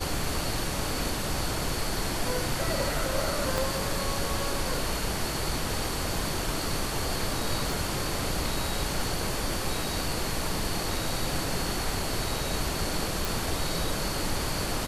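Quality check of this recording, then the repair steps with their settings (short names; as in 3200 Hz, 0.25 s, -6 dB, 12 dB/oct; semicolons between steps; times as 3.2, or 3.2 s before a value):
3.58 pop
7.72 pop
13.25 pop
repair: de-click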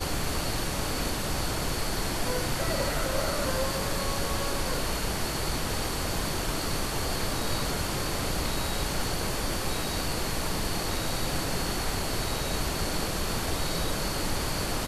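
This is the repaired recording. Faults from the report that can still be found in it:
3.58 pop
7.72 pop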